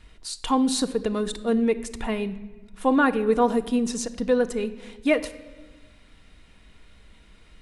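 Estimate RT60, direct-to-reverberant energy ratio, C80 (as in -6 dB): 1.3 s, 7.0 dB, 16.5 dB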